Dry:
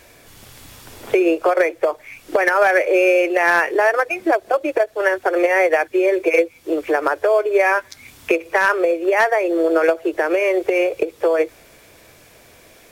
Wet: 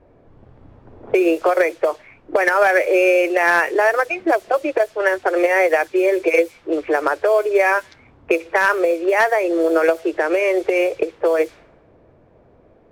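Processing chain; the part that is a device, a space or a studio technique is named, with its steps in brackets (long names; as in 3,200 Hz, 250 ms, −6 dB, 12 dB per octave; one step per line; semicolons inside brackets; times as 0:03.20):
cassette deck with a dynamic noise filter (white noise bed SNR 28 dB; low-pass that shuts in the quiet parts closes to 550 Hz, open at −13 dBFS)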